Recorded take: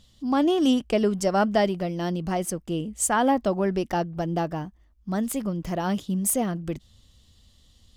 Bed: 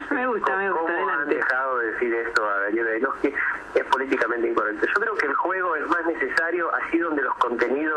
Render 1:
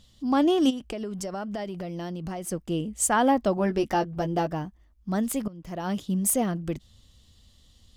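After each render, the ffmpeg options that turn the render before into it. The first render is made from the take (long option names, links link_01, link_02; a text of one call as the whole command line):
ffmpeg -i in.wav -filter_complex "[0:a]asplit=3[link_01][link_02][link_03];[link_01]afade=type=out:start_time=0.69:duration=0.02[link_04];[link_02]acompressor=threshold=-30dB:ratio=6:attack=3.2:release=140:knee=1:detection=peak,afade=type=in:start_time=0.69:duration=0.02,afade=type=out:start_time=2.5:duration=0.02[link_05];[link_03]afade=type=in:start_time=2.5:duration=0.02[link_06];[link_04][link_05][link_06]amix=inputs=3:normalize=0,asettb=1/sr,asplit=3[link_07][link_08][link_09];[link_07]atrim=end=3.564[link_10];[link_08]atrim=start=3.56:end=4.47,asetpts=PTS-STARTPTS,afade=type=in:duration=0.004:curve=qsin,afade=type=out:start_time=0.906:duration=0.004:curve=qsin,asplit=2[link_11][link_12];[link_12]adelay=14,volume=-6dB[link_13];[link_11][link_13]amix=inputs=2:normalize=0,atrim=end_sample=40131[link_14];[link_09]atrim=start=4.466[link_15];[link_10][link_14]acrossfade=duration=0.004:curve1=hsin:curve2=qsin[link_16];[link_16][link_15]acrossfade=duration=0.004:curve1=qsin:curve2=hsin,asplit=2[link_17][link_18];[link_17]atrim=end=5.48,asetpts=PTS-STARTPTS,afade=type=out:start_time=5.476:duration=0.004:curve=hsin:silence=0.105925[link_19];[link_18]atrim=start=5.48,asetpts=PTS-STARTPTS,afade=type=in:duration=0.65:silence=0.105925[link_20];[link_19][link_20]concat=n=2:v=0:a=1" out.wav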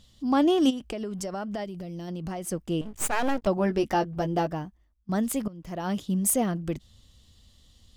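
ffmpeg -i in.wav -filter_complex "[0:a]asplit=3[link_01][link_02][link_03];[link_01]afade=type=out:start_time=1.64:duration=0.02[link_04];[link_02]equalizer=frequency=1200:width_type=o:width=2.9:gain=-10,afade=type=in:start_time=1.64:duration=0.02,afade=type=out:start_time=2.07:duration=0.02[link_05];[link_03]afade=type=in:start_time=2.07:duration=0.02[link_06];[link_04][link_05][link_06]amix=inputs=3:normalize=0,asettb=1/sr,asplit=3[link_07][link_08][link_09];[link_07]atrim=end=2.814[link_10];[link_08]atrim=start=2.81:end=3.47,asetpts=PTS-STARTPTS,afade=type=in:duration=0.004:curve=qsin,afade=type=out:start_time=0.656:duration=0.004:curve=qsin,aeval=exprs='max(val(0),0)':channel_layout=same[link_11];[link_09]atrim=start=3.466[link_12];[link_10][link_11]acrossfade=duration=0.004:curve1=hsin:curve2=qsin[link_13];[link_13][link_12]acrossfade=duration=0.004:curve1=qsin:curve2=hsin,asplit=2[link_14][link_15];[link_14]atrim=end=5.09,asetpts=PTS-STARTPTS,afade=type=out:start_time=4.44:duration=0.65:silence=0.141254[link_16];[link_15]atrim=start=5.09,asetpts=PTS-STARTPTS,afade=type=in:duration=0.004:curve=hsin:silence=0.141254[link_17];[link_16][link_17]concat=n=2:v=0:a=1" out.wav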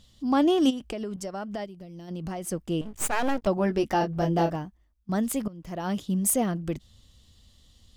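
ffmpeg -i in.wav -filter_complex "[0:a]asettb=1/sr,asplit=3[link_01][link_02][link_03];[link_01]atrim=end=1.164[link_04];[link_02]atrim=start=1.16:end=2.11,asetpts=PTS-STARTPTS,afade=type=in:duration=0.004:curve=qsin,afade=type=out:start_time=0.946:duration=0.004:curve=qsin,agate=range=-33dB:threshold=-32dB:ratio=3:release=100:detection=peak[link_05];[link_03]atrim=start=2.106[link_06];[link_04][link_05]acrossfade=duration=0.004:curve1=hsin:curve2=qsin[link_07];[link_07][link_06]acrossfade=duration=0.004:curve1=qsin:curve2=hsin,asettb=1/sr,asplit=3[link_08][link_09][link_10];[link_08]atrim=end=3.984[link_11];[link_09]atrim=start=3.98:end=4.56,asetpts=PTS-STARTPTS,afade=type=in:duration=0.004:curve=qsin,afade=type=out:start_time=0.576:duration=0.004:curve=qsin,asplit=2[link_12][link_13];[link_13]adelay=30,volume=-3.5dB[link_14];[link_12][link_14]amix=inputs=2:normalize=0,atrim=end_sample=25578[link_15];[link_10]atrim=start=4.556[link_16];[link_11][link_15]acrossfade=duration=0.004:curve1=hsin:curve2=qsin[link_17];[link_17][link_16]acrossfade=duration=0.004:curve1=qsin:curve2=hsin" out.wav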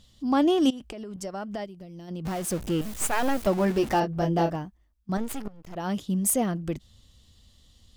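ffmpeg -i in.wav -filter_complex "[0:a]asettb=1/sr,asplit=3[link_01][link_02][link_03];[link_01]atrim=end=0.704[link_04];[link_02]atrim=start=0.7:end=1.16,asetpts=PTS-STARTPTS,afade=type=in:duration=0.004:curve=qsin,afade=type=out:start_time=0.456:duration=0.004:curve=qsin,acompressor=threshold=-34dB:ratio=6:attack=3.2:release=140:knee=1:detection=peak[link_05];[link_03]atrim=start=1.156[link_06];[link_04][link_05]acrossfade=duration=0.004:curve1=hsin:curve2=qsin[link_07];[link_07][link_06]acrossfade=duration=0.004:curve1=qsin:curve2=hsin,asettb=1/sr,asplit=3[link_08][link_09][link_10];[link_08]atrim=end=2.254[link_11];[link_09]atrim=start=2.25:end=4,asetpts=PTS-STARTPTS,afade=type=in:duration=0.004:curve=qsin,afade=type=out:start_time=1.746:duration=0.004:curve=qsin,aeval=exprs='val(0)+0.5*0.0237*sgn(val(0))':channel_layout=same[link_12];[link_10]atrim=start=3.996[link_13];[link_11][link_12]acrossfade=duration=0.004:curve1=hsin:curve2=qsin[link_14];[link_14][link_13]acrossfade=duration=0.004:curve1=qsin:curve2=hsin,asettb=1/sr,asplit=3[link_15][link_16][link_17];[link_15]atrim=end=5.174[link_18];[link_16]atrim=start=5.17:end=5.76,asetpts=PTS-STARTPTS,afade=type=in:duration=0.004:curve=qsin,afade=type=out:start_time=0.586:duration=0.004:curve=qsin,aeval=exprs='max(val(0),0)':channel_layout=same[link_19];[link_17]atrim=start=5.756[link_20];[link_18][link_19]acrossfade=duration=0.004:curve1=hsin:curve2=qsin[link_21];[link_21][link_20]acrossfade=duration=0.004:curve1=qsin:curve2=hsin" out.wav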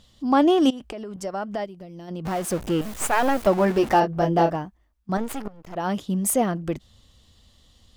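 ffmpeg -i in.wav -af "equalizer=frequency=890:width=0.39:gain=6.5" out.wav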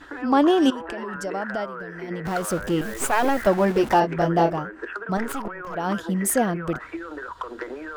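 ffmpeg -i in.wav -i bed.wav -filter_complex "[1:a]volume=-11.5dB[link_01];[0:a][link_01]amix=inputs=2:normalize=0" out.wav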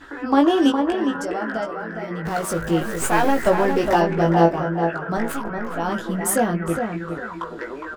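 ffmpeg -i in.wav -filter_complex "[0:a]asplit=2[link_01][link_02];[link_02]adelay=18,volume=-4dB[link_03];[link_01][link_03]amix=inputs=2:normalize=0,asplit=2[link_04][link_05];[link_05]adelay=411,lowpass=frequency=2200:poles=1,volume=-5.5dB,asplit=2[link_06][link_07];[link_07]adelay=411,lowpass=frequency=2200:poles=1,volume=0.26,asplit=2[link_08][link_09];[link_09]adelay=411,lowpass=frequency=2200:poles=1,volume=0.26[link_10];[link_04][link_06][link_08][link_10]amix=inputs=4:normalize=0" out.wav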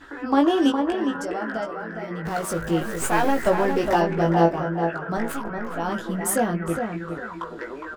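ffmpeg -i in.wav -af "volume=-2.5dB" out.wav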